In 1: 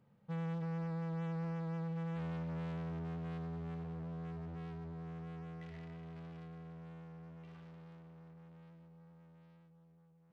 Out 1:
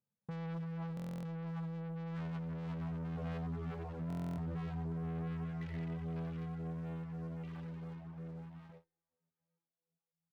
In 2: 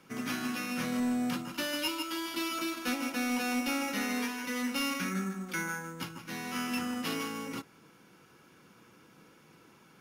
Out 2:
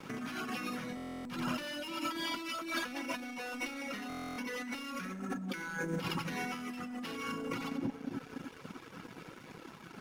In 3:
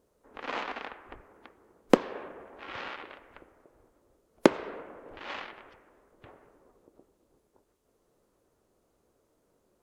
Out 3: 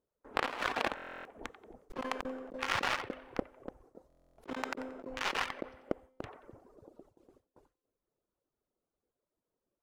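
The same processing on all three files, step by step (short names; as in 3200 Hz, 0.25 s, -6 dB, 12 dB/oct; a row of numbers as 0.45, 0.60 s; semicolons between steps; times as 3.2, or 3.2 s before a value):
split-band echo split 700 Hz, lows 0.291 s, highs 90 ms, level -6 dB; reverb removal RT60 1.2 s; high shelf 5700 Hz -10 dB; gate with hold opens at -55 dBFS; sample leveller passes 2; resonator 260 Hz, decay 1 s, mix 30%; negative-ratio compressor -42 dBFS, ratio -1; stuck buffer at 0.95/4.08, samples 1024, times 12; gain +2.5 dB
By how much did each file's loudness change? +1.0, -5.5, -6.0 LU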